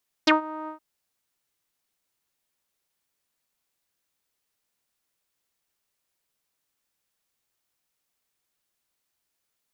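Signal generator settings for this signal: synth note saw D#4 12 dB/octave, low-pass 1.1 kHz, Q 6.5, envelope 2.5 oct, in 0.05 s, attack 7.8 ms, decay 0.13 s, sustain -20 dB, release 0.11 s, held 0.41 s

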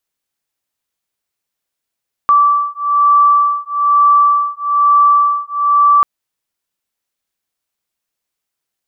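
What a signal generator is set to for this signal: beating tones 1.16 kHz, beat 1.1 Hz, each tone -11.5 dBFS 3.74 s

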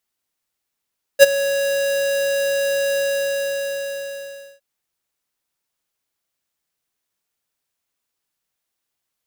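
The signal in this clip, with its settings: ADSR square 556 Hz, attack 40 ms, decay 21 ms, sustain -16 dB, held 1.79 s, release 1620 ms -4 dBFS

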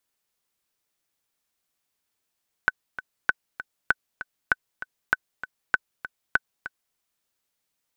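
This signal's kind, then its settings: metronome 196 bpm, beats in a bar 2, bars 7, 1.51 kHz, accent 14 dB -5.5 dBFS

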